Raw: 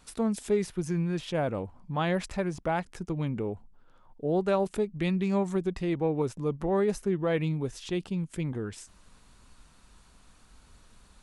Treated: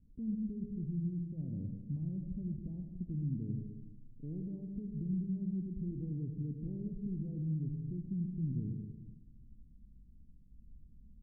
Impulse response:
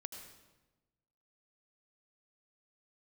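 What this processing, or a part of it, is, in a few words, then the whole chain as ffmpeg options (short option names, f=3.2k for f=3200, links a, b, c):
club heard from the street: -filter_complex "[0:a]alimiter=level_in=2.5dB:limit=-24dB:level=0:latency=1,volume=-2.5dB,lowpass=f=240:w=0.5412,lowpass=f=240:w=1.3066[a];[1:a]atrim=start_sample=2205[b];[a][b]afir=irnorm=-1:irlink=0,volume=3dB"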